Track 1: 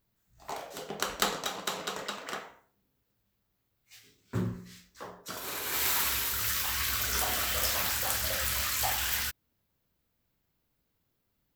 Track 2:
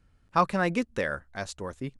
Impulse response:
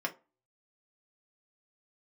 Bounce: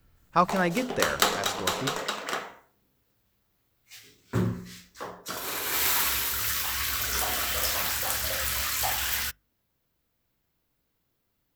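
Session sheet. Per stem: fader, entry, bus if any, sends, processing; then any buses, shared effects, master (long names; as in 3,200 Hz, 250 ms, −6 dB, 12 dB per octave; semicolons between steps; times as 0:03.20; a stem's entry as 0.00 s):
+3.0 dB, 0.00 s, send −22.5 dB, no processing
−1.0 dB, 0.00 s, no send, no processing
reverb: on, RT60 0.30 s, pre-delay 3 ms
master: mains-hum notches 50/100/150/200/250 Hz; speech leveller within 3 dB 2 s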